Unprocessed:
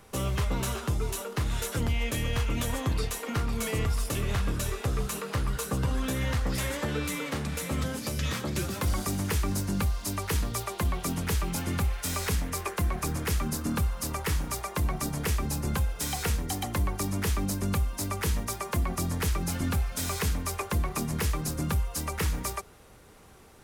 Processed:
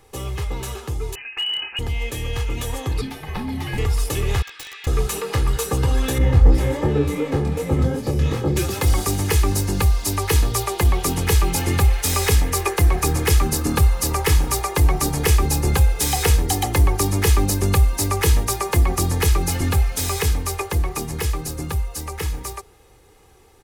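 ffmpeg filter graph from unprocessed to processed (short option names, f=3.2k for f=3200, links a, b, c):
-filter_complex "[0:a]asettb=1/sr,asplit=3[a][b][c];[a]atrim=end=1.154[d];[b]atrim=start=1.15:end=1.79,asetpts=PTS-STARTPTS,afade=t=in:d=0.004:c=qsin,afade=t=out:st=0.636:d=0.004:c=qsin,lowpass=f=2.6k:t=q:w=0.5098,lowpass=f=2.6k:t=q:w=0.6013,lowpass=f=2.6k:t=q:w=0.9,lowpass=f=2.6k:t=q:w=2.563,afreqshift=-3000,asoftclip=type=hard:threshold=-23dB[e];[c]atrim=start=1.786[f];[d][e]acrossfade=d=0.004:c1=hsin:c2=qsin[g];[g][f]acrossfade=d=0.004:c1=qsin:c2=hsin,asettb=1/sr,asplit=3[h][i][j];[h]atrim=end=3.014[k];[i]atrim=start=3.01:end=3.78,asetpts=PTS-STARTPTS,afade=t=in:d=0.004:c=qsin,afade=t=out:st=0.766:d=0.004:c=qsin,equalizer=f=7.2k:t=o:w=0.69:g=-10.5,acrossover=split=5600[l][m];[m]acompressor=threshold=-51dB:ratio=4:attack=1:release=60[n];[l][n]amix=inputs=2:normalize=0,afreqshift=-310[o];[j]atrim=start=3.776[p];[k][o]acrossfade=d=0.004:c1=hsin:c2=qsin[q];[q][p]acrossfade=d=0.004:c1=qsin:c2=hsin,asettb=1/sr,asplit=3[r][s][t];[r]atrim=end=4.424[u];[s]atrim=start=4.42:end=4.87,asetpts=PTS-STARTPTS,afade=t=in:d=0.004:c=qsin,afade=t=out:st=0.446:d=0.004:c=qsin,asuperpass=centerf=2600:order=4:qfactor=1,aeval=exprs='(mod(53.1*val(0)+1,2)-1)/53.1':c=same[v];[t]atrim=start=4.866[w];[u][v]acrossfade=d=0.004:c1=hsin:c2=qsin[x];[x][w]acrossfade=d=0.004:c1=qsin:c2=hsin,asettb=1/sr,asplit=3[y][z][aa];[y]atrim=end=6.184[ab];[z]atrim=start=6.18:end=8.57,asetpts=PTS-STARTPTS,afade=t=in:d=0.004:c=qsin,afade=t=out:st=2.386:d=0.004:c=qsin,flanger=delay=18.5:depth=4.4:speed=2.7,tiltshelf=f=1.1k:g=9[ac];[aa]atrim=start=8.566[ad];[ab][ac]acrossfade=d=0.004:c1=hsin:c2=qsin[ae];[ae][ad]acrossfade=d=0.004:c1=qsin:c2=hsin,equalizer=f=1.4k:w=5.1:g=-6,aecho=1:1:2.4:0.57,dynaudnorm=f=360:g=21:m=10dB"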